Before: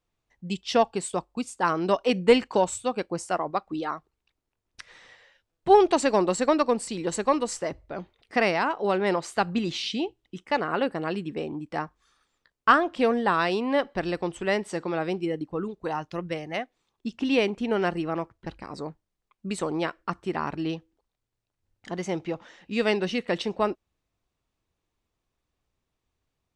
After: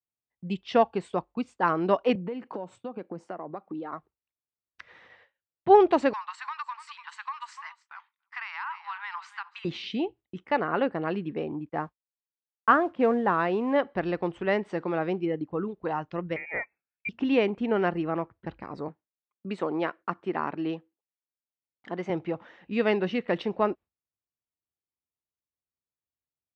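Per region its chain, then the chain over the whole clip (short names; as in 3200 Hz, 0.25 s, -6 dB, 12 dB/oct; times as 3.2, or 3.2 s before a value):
2.15–3.93 HPF 150 Hz 24 dB/oct + tilt shelf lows +5 dB, about 870 Hz + compressor 5:1, threshold -33 dBFS
6.13–9.65 steep high-pass 920 Hz 72 dB/oct + echo 0.293 s -18 dB + compressor, threshold -30 dBFS
11.69–13.76 expander -40 dBFS + high shelf 3200 Hz -12 dB + modulation noise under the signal 28 dB
16.36–17.09 notch 1500 Hz, Q 24 + inverted band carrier 2600 Hz
18.88–22.1 HPF 200 Hz + high shelf 6700 Hz -3 dB
whole clip: LPF 2400 Hz 12 dB/oct; gate with hold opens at -45 dBFS; HPF 68 Hz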